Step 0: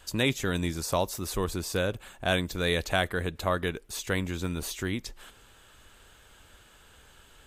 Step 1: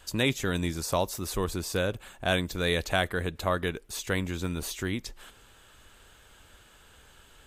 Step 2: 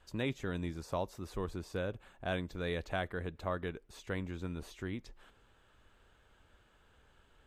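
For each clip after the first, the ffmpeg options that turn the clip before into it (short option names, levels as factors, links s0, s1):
-af anull
-af "lowpass=f=1700:p=1,volume=0.398"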